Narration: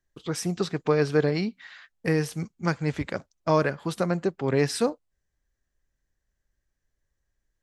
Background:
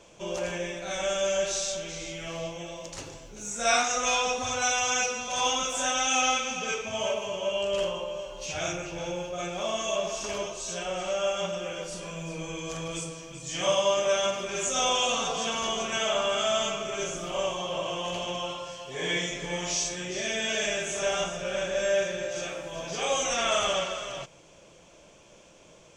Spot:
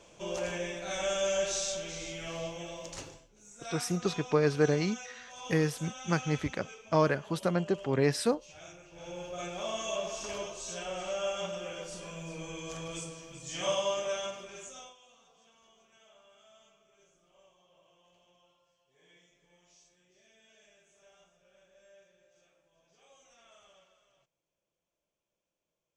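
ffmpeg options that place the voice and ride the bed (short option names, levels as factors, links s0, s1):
-filter_complex "[0:a]adelay=3450,volume=0.668[s0];[1:a]volume=3.16,afade=t=out:st=2.98:d=0.3:silence=0.16788,afade=t=in:st=8.9:d=0.41:silence=0.223872,afade=t=out:st=13.7:d=1.25:silence=0.0354813[s1];[s0][s1]amix=inputs=2:normalize=0"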